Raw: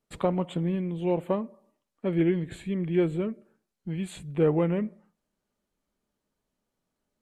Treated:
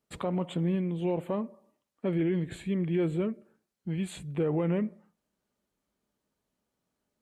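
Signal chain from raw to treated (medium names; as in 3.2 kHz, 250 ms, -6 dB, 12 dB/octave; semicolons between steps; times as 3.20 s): high-pass 46 Hz; peak limiter -20 dBFS, peak gain reduction 8 dB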